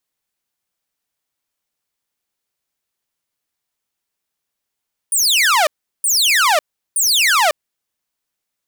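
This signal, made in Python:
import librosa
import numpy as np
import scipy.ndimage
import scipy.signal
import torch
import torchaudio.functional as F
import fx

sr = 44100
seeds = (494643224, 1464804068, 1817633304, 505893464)

y = fx.laser_zaps(sr, level_db=-8.5, start_hz=9800.0, end_hz=570.0, length_s=0.55, wave='saw', shots=3, gap_s=0.37)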